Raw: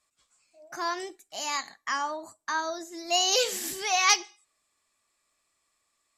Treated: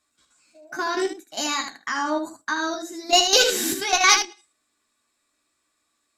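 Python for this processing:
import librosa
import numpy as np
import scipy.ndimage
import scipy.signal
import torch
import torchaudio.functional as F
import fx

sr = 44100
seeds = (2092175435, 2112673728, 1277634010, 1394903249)

p1 = fx.level_steps(x, sr, step_db=12)
p2 = fx.cheby_harmonics(p1, sr, harmonics=(4,), levels_db=(-27,), full_scale_db=-13.5)
p3 = fx.small_body(p2, sr, hz=(280.0, 1500.0, 3800.0), ring_ms=30, db=11)
p4 = p3 + fx.room_early_taps(p3, sr, ms=(13, 77), db=(-5.0, -7.0), dry=0)
y = p4 * 10.0 ** (8.0 / 20.0)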